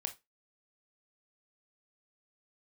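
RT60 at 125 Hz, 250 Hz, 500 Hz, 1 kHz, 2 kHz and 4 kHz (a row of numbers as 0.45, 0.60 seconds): 0.15, 0.25, 0.20, 0.20, 0.20, 0.20 seconds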